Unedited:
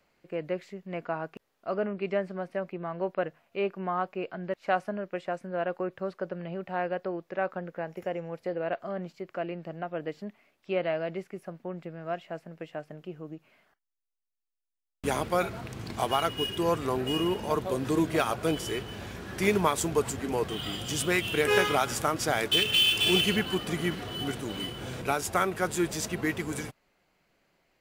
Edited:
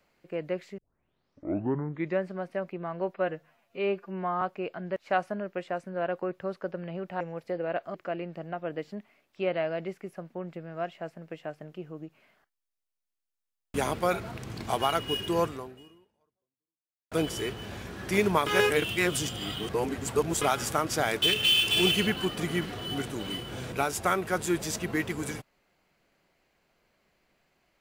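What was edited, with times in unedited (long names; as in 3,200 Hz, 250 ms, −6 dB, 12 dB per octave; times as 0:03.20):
0:00.78: tape start 1.47 s
0:03.14–0:03.99: time-stretch 1.5×
0:06.78–0:08.17: remove
0:08.91–0:09.24: remove
0:16.73–0:18.41: fade out exponential
0:19.76–0:21.71: reverse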